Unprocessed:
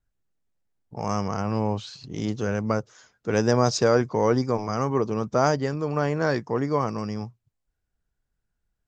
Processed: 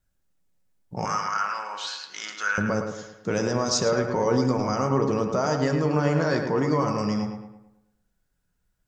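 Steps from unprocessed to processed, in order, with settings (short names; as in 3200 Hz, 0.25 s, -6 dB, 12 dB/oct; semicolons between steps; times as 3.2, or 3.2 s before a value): high shelf 4700 Hz +6 dB; limiter -17.5 dBFS, peak gain reduction 11.5 dB; 1.05–2.58 resonant high-pass 1400 Hz, resonance Q 3.7; darkening echo 0.109 s, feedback 45%, low-pass 3300 Hz, level -6 dB; on a send at -6 dB: reverb RT60 0.50 s, pre-delay 3 ms; on the sum: gain +3 dB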